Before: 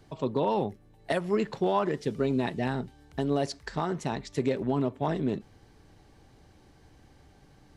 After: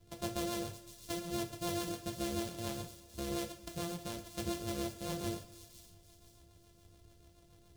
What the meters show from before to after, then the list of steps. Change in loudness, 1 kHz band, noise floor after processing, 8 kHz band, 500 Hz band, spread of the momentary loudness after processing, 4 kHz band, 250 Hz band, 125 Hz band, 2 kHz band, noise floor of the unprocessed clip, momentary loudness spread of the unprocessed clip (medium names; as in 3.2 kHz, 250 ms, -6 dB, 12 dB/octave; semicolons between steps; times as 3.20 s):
-10.0 dB, -12.5 dB, -63 dBFS, +6.5 dB, -12.5 dB, 10 LU, -0.5 dB, -10.0 dB, -10.5 dB, -9.5 dB, -58 dBFS, 6 LU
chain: sorted samples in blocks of 128 samples; ten-band graphic EQ 250 Hz -9 dB, 1 kHz -7 dB, 2 kHz -9 dB; in parallel at +0.5 dB: compression, threshold -40 dBFS, peak gain reduction 13 dB; on the sum: rotary cabinet horn 7 Hz; on a send: feedback echo behind a high-pass 511 ms, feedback 38%, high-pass 4.5 kHz, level -9.5 dB; on the sum: two-slope reverb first 0.34 s, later 1.7 s, from -17 dB, DRR 2 dB; endings held to a fixed fall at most 250 dB/s; trim -8.5 dB